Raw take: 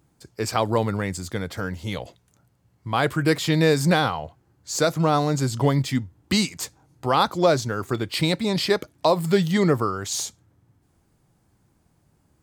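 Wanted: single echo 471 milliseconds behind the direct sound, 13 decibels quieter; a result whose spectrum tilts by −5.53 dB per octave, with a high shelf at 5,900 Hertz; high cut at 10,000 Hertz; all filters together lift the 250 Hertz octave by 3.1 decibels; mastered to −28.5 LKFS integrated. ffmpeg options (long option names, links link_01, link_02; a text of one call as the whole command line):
ffmpeg -i in.wav -af "lowpass=10000,equalizer=frequency=250:width_type=o:gain=4.5,highshelf=frequency=5900:gain=-6.5,aecho=1:1:471:0.224,volume=-6.5dB" out.wav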